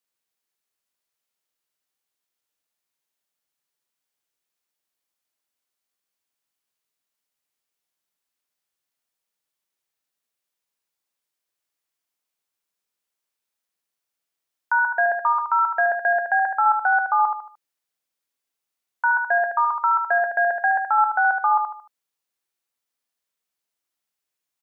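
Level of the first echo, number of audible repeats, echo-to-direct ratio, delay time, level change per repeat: -6.0 dB, 4, -5.5 dB, 75 ms, -8.5 dB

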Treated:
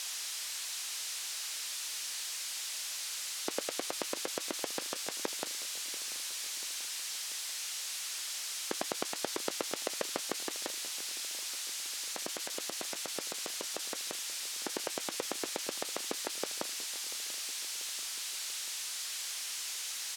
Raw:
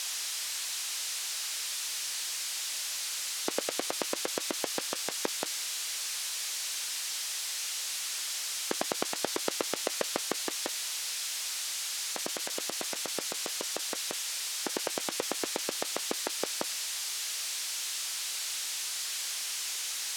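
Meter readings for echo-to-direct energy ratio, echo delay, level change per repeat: -16.0 dB, 688 ms, -5.0 dB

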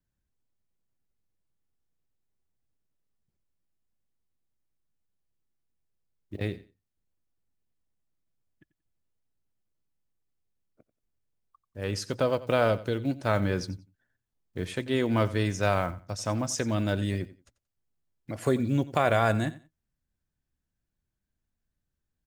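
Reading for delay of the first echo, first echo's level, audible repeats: 90 ms, -17.5 dB, 2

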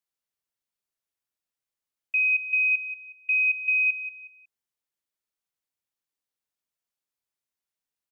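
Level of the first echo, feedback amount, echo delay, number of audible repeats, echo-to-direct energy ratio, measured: -12.0 dB, 31%, 183 ms, 3, -11.5 dB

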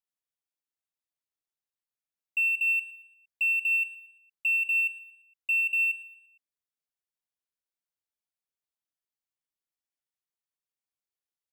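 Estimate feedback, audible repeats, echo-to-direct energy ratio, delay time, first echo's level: 43%, 3, -14.5 dB, 115 ms, -15.5 dB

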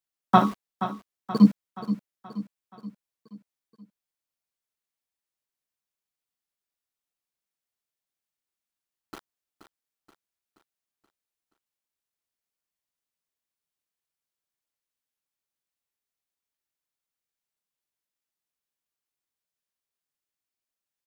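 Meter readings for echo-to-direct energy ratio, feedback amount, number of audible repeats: -10.5 dB, 51%, 4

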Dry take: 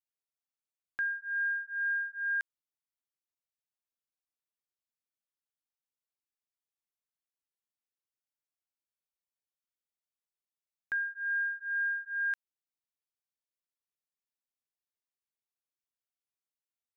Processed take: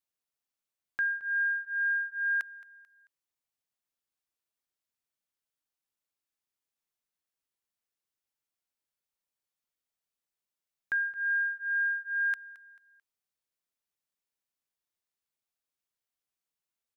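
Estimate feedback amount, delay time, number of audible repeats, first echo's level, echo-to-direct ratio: 38%, 220 ms, 2, -19.0 dB, -18.5 dB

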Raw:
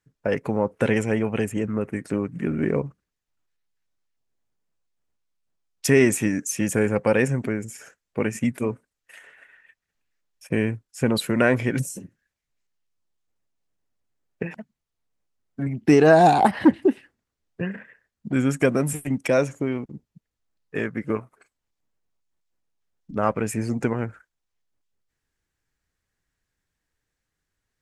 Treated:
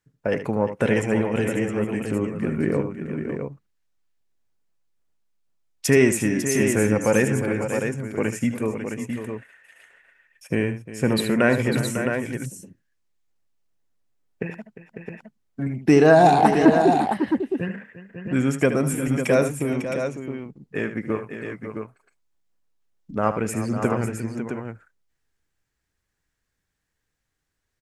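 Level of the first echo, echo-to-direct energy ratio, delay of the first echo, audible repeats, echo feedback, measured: -11.0 dB, -3.5 dB, 76 ms, 4, no regular repeats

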